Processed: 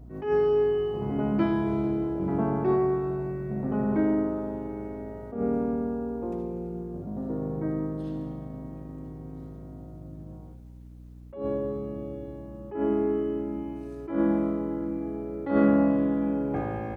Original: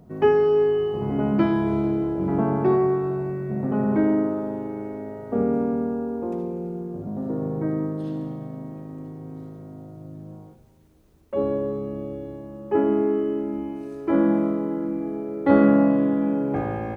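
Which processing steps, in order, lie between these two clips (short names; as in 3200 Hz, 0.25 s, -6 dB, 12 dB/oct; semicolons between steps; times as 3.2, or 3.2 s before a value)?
hum 60 Hz, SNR 18 dB; attack slew limiter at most 120 dB/s; gain -4 dB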